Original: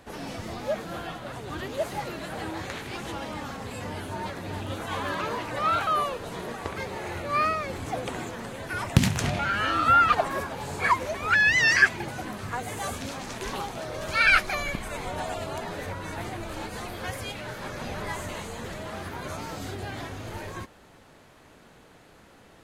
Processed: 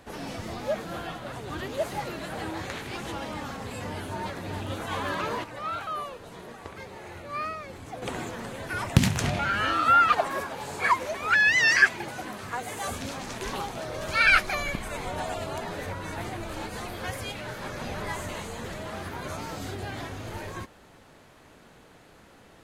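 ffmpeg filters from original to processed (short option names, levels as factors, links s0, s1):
-filter_complex "[0:a]asettb=1/sr,asplit=3[s0][s1][s2];[s0]atrim=end=9.734[s3];[s1]atrim=start=9.73:end=12.88,asetpts=PTS-STARTPTS,afade=t=in:d=0.004:c=qsin,afade=t=out:st=3.146:d=0.004:c=qsin,lowshelf=f=170:g=-10[s4];[s2]atrim=start=12.876[s5];[s3][s4]acrossfade=d=0.004:c1=hsin:c2=qsin[s6];[s6][s5]acrossfade=d=0.004:c1=qsin:c2=hsin,asplit=3[s7][s8][s9];[s7]atrim=end=5.442[s10];[s8]atrim=start=5.438:end=8.022,asetpts=PTS-STARTPTS,volume=0.398[s11];[s9]atrim=start=8.018[s12];[s10][s11]acrossfade=d=0.004:c1=hsin:c2=hsin[s13];[s13][s12]acrossfade=d=0.004:c1=hsin:c2=hsin"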